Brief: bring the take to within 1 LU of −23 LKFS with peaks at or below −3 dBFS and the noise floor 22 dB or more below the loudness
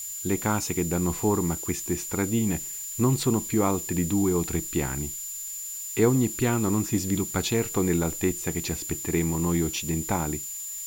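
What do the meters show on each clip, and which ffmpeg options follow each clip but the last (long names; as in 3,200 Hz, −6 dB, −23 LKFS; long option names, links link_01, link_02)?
interfering tone 7,100 Hz; level of the tone −34 dBFS; background noise floor −36 dBFS; target noise floor −49 dBFS; integrated loudness −26.5 LKFS; sample peak −9.0 dBFS; target loudness −23.0 LKFS
→ -af "bandreject=frequency=7100:width=30"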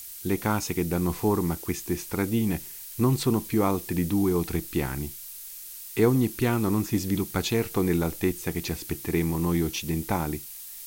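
interfering tone none found; background noise floor −41 dBFS; target noise floor −49 dBFS
→ -af "afftdn=noise_reduction=8:noise_floor=-41"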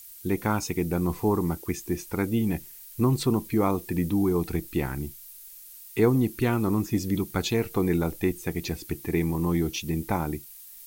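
background noise floor −46 dBFS; target noise floor −49 dBFS
→ -af "afftdn=noise_reduction=6:noise_floor=-46"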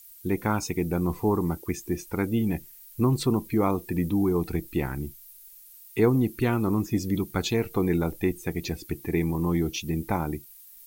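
background noise floor −50 dBFS; integrated loudness −27.0 LKFS; sample peak −9.5 dBFS; target loudness −23.0 LKFS
→ -af "volume=4dB"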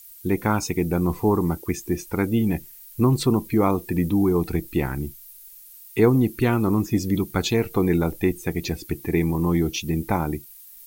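integrated loudness −23.0 LKFS; sample peak −5.5 dBFS; background noise floor −46 dBFS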